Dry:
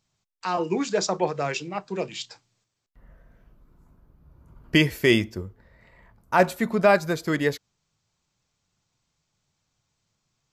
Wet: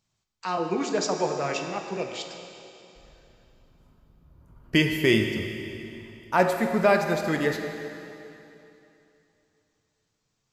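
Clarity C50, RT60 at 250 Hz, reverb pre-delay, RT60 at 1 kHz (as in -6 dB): 5.0 dB, 2.9 s, 18 ms, 2.9 s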